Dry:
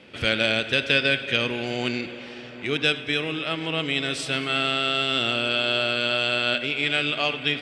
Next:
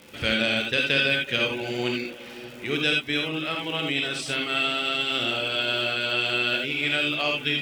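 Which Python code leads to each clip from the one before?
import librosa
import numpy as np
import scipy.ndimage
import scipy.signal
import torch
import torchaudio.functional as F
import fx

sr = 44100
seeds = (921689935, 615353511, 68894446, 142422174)

y = fx.dereverb_blind(x, sr, rt60_s=0.56)
y = fx.dmg_crackle(y, sr, seeds[0], per_s=170.0, level_db=-35.0)
y = fx.rev_gated(y, sr, seeds[1], gate_ms=100, shape='rising', drr_db=1.0)
y = y * 10.0 ** (-2.5 / 20.0)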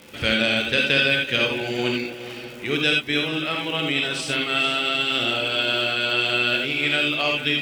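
y = x + 10.0 ** (-13.0 / 20.0) * np.pad(x, (int(446 * sr / 1000.0), 0))[:len(x)]
y = y * 10.0 ** (3.0 / 20.0)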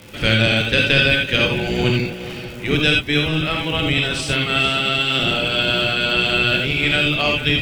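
y = fx.octave_divider(x, sr, octaves=1, level_db=3.0)
y = y * 10.0 ** (3.5 / 20.0)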